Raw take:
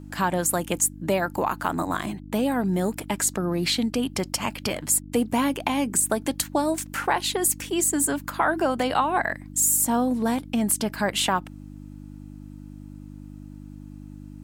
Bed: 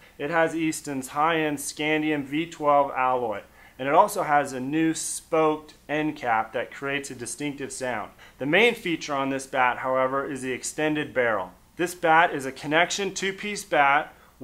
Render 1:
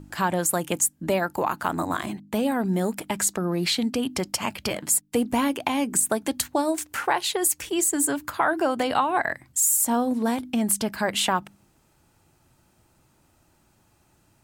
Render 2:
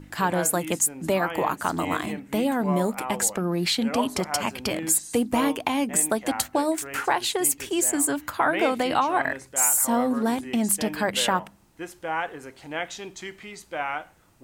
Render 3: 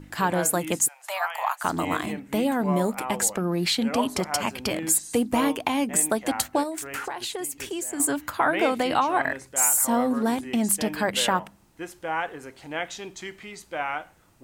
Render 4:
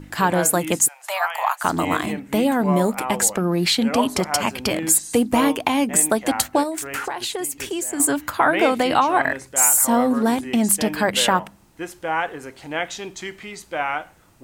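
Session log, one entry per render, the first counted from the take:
de-hum 50 Hz, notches 6
add bed -10 dB
0.88–1.64 s: steep high-pass 670 Hz 48 dB/octave; 6.63–8.00 s: compression 12:1, threshold -27 dBFS
trim +5 dB

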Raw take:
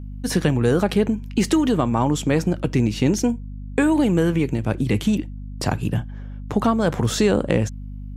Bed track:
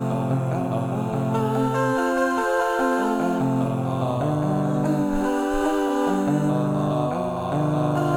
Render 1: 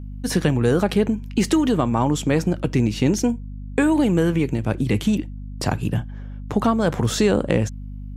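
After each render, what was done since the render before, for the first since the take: no audible change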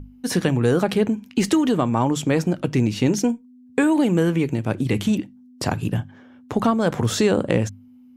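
hum notches 50/100/150/200 Hz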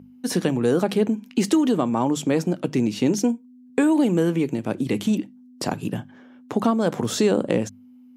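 Chebyshev high-pass 210 Hz, order 2; dynamic bell 1.8 kHz, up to -4 dB, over -38 dBFS, Q 0.93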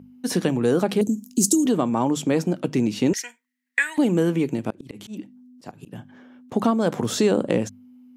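1.01–1.66 s: FFT filter 290 Hz 0 dB, 1.9 kHz -30 dB, 6.8 kHz +14 dB; 3.13–3.98 s: resonant high-pass 1.9 kHz, resonance Q 14; 4.70–6.52 s: slow attack 293 ms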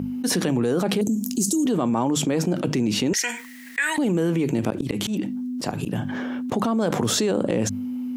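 peak limiter -16 dBFS, peak gain reduction 10 dB; level flattener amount 70%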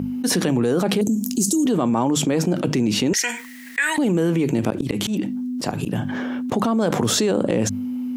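trim +2.5 dB

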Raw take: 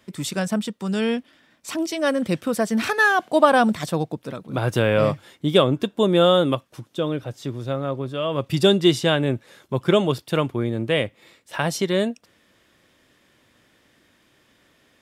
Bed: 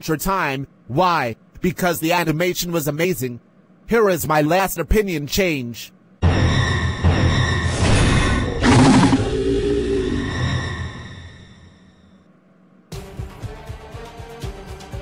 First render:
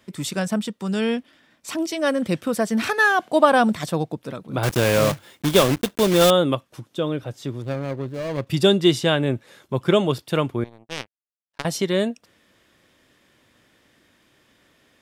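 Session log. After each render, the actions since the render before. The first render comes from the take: 4.63–6.32 s: block-companded coder 3-bit; 7.62–8.47 s: median filter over 41 samples; 10.64–11.65 s: power-law waveshaper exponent 3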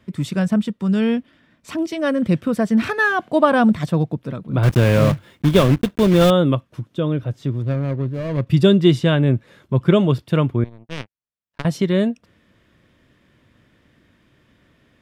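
tone controls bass +10 dB, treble -9 dB; band-stop 800 Hz, Q 12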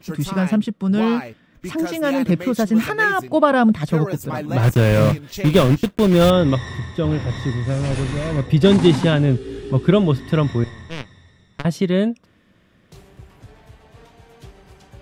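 add bed -12 dB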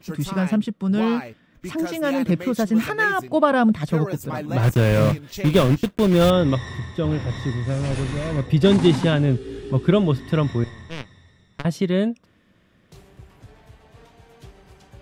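trim -2.5 dB

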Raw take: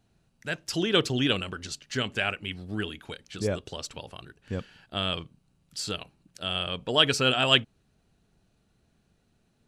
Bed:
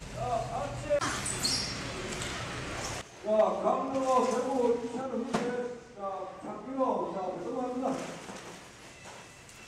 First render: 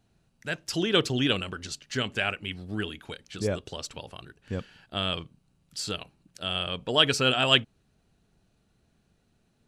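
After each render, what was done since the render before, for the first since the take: no audible change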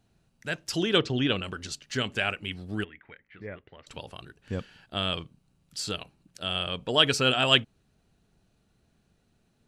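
0.98–1.44 s: distance through air 130 m; 2.84–3.87 s: four-pole ladder low-pass 2.1 kHz, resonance 80%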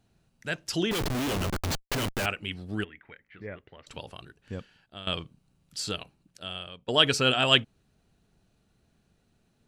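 0.91–2.26 s: Schmitt trigger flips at -35 dBFS; 4.02–5.07 s: fade out, to -15 dB; 5.93–6.88 s: fade out, to -20 dB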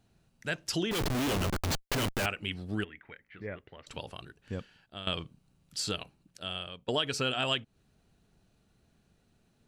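compression 6:1, threshold -27 dBFS, peak gain reduction 12.5 dB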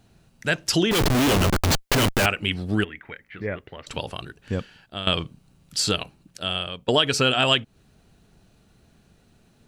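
trim +10.5 dB

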